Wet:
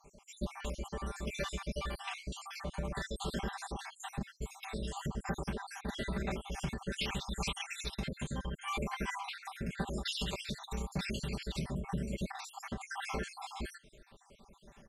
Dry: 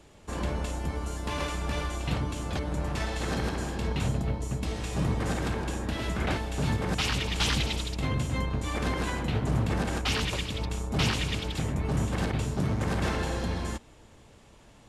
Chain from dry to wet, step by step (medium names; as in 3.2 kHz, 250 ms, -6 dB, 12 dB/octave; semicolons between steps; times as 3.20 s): random holes in the spectrogram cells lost 61%; compression 5:1, threshold -31 dBFS, peak gain reduction 8 dB; comb 5.1 ms, depth 88%; trim -3.5 dB